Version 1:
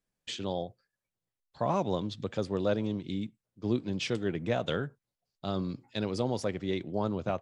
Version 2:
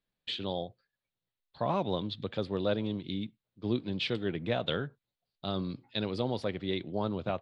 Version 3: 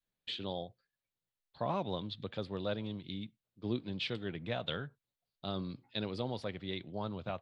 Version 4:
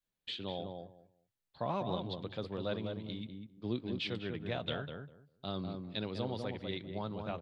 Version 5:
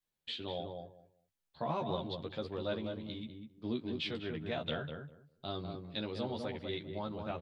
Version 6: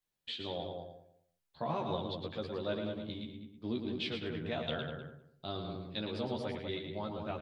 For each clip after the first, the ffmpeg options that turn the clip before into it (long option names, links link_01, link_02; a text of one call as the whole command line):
ffmpeg -i in.wav -af "highshelf=frequency=5000:width_type=q:width=3:gain=-8.5,volume=-1.5dB" out.wav
ffmpeg -i in.wav -af "adynamicequalizer=threshold=0.00562:dfrequency=350:dqfactor=0.92:tfrequency=350:tqfactor=0.92:attack=5:release=100:ratio=0.375:range=3:mode=cutabove:tftype=bell,volume=-4dB" out.wav
ffmpeg -i in.wav -filter_complex "[0:a]asplit=2[link_01][link_02];[link_02]adelay=199,lowpass=frequency=1100:poles=1,volume=-4dB,asplit=2[link_03][link_04];[link_04]adelay=199,lowpass=frequency=1100:poles=1,volume=0.2,asplit=2[link_05][link_06];[link_06]adelay=199,lowpass=frequency=1100:poles=1,volume=0.2[link_07];[link_01][link_03][link_05][link_07]amix=inputs=4:normalize=0,volume=-1dB" out.wav
ffmpeg -i in.wav -filter_complex "[0:a]asplit=2[link_01][link_02];[link_02]adelay=13,volume=-3.5dB[link_03];[link_01][link_03]amix=inputs=2:normalize=0,volume=-1.5dB" out.wav
ffmpeg -i in.wav -af "aecho=1:1:111:0.447" out.wav